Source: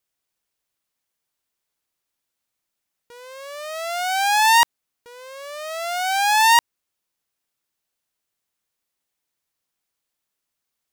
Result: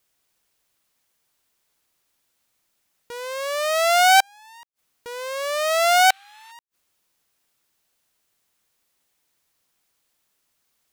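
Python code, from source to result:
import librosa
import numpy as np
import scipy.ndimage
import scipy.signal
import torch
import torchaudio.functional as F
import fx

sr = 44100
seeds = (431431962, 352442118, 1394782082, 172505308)

y = fx.spec_paint(x, sr, seeds[0], shape='noise', start_s=6.1, length_s=0.42, low_hz=1100.0, high_hz=4300.0, level_db=-23.0)
y = fx.gate_flip(y, sr, shuts_db=-16.0, range_db=-41)
y = y * librosa.db_to_amplitude(9.0)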